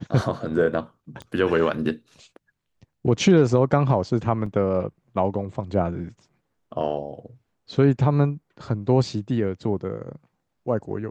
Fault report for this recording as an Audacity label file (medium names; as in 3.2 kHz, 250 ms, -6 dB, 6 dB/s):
1.220000	1.220000	pop -25 dBFS
4.460000	4.460000	dropout 3.7 ms